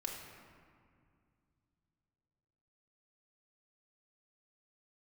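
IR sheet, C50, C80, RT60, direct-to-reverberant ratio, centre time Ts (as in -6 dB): 3.0 dB, 4.5 dB, 2.2 s, -1.0 dB, 70 ms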